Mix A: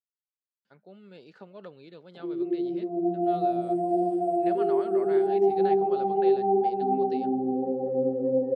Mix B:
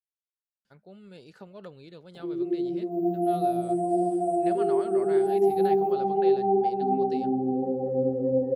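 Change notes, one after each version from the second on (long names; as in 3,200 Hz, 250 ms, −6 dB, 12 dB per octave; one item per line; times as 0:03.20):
master: remove band-pass filter 180–4,200 Hz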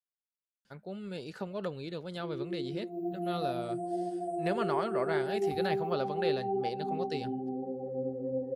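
speech +7.5 dB
background −9.5 dB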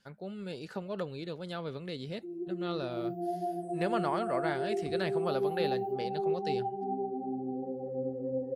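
speech: entry −0.65 s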